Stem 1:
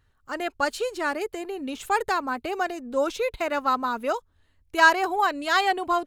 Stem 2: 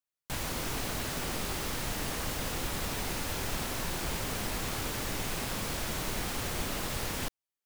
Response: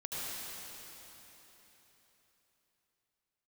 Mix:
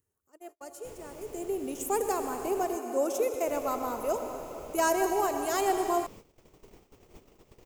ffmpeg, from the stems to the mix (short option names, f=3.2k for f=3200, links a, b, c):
-filter_complex "[0:a]highpass=89,adynamicequalizer=threshold=0.00794:dfrequency=670:dqfactor=6.7:tfrequency=670:tqfactor=6.7:attack=5:release=100:ratio=0.375:range=3:mode=boostabove:tftype=bell,aexciter=amount=6.3:drive=2.5:freq=5.6k,volume=-10dB,afade=t=in:st=1.21:d=0.3:silence=0.223872,asplit=2[a][b];[b]volume=-6dB[c];[1:a]aeval=exprs='val(0)+0.001*(sin(2*PI*60*n/s)+sin(2*PI*2*60*n/s)/2+sin(2*PI*3*60*n/s)/3+sin(2*PI*4*60*n/s)/4+sin(2*PI*5*60*n/s)/5)':c=same,equalizer=f=11k:t=o:w=0.66:g=-13,adelay=550,volume=-15.5dB,asplit=3[d][e][f];[d]atrim=end=2.77,asetpts=PTS-STARTPTS,afade=t=out:st=2.766:d=0.004:c=hsin[g];[e]atrim=start=2.77:end=3.47,asetpts=PTS-STARTPTS,volume=0[h];[f]atrim=start=3.47,asetpts=PTS-STARTPTS,afade=t=in:d=0.004:c=hsin[i];[g][h][i]concat=n=3:v=0:a=1[j];[2:a]atrim=start_sample=2205[k];[c][k]afir=irnorm=-1:irlink=0[l];[a][j][l]amix=inputs=3:normalize=0,agate=range=-39dB:threshold=-47dB:ratio=16:detection=peak,acompressor=mode=upward:threshold=-49dB:ratio=2.5,equalizer=f=400:t=o:w=0.67:g=10,equalizer=f=1.6k:t=o:w=0.67:g=-9,equalizer=f=4k:t=o:w=0.67:g=-8"